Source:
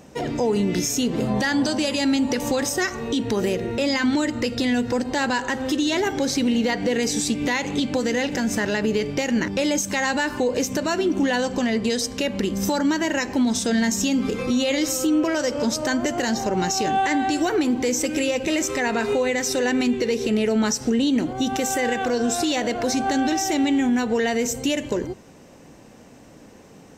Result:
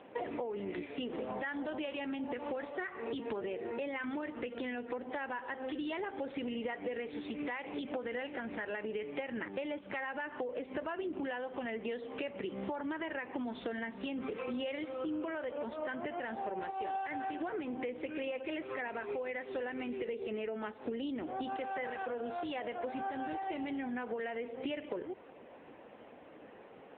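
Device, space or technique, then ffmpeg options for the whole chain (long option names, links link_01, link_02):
voicemail: -af "highpass=400,lowpass=2800,acompressor=threshold=-34dB:ratio=12" -ar 8000 -c:a libopencore_amrnb -b:a 6700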